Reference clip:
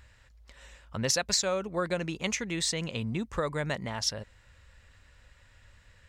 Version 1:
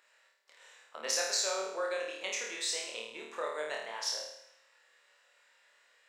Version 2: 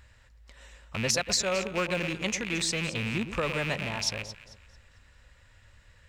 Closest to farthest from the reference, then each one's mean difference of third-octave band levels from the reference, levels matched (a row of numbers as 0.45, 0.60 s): 2, 1; 4.5, 8.5 dB